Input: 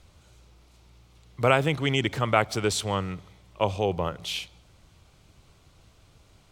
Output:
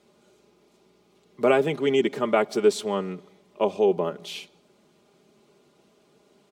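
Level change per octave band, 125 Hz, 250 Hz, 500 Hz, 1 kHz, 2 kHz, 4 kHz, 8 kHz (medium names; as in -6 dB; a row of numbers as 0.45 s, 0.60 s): -9.5 dB, +3.0 dB, +5.5 dB, -1.5 dB, -3.5 dB, -4.5 dB, -5.0 dB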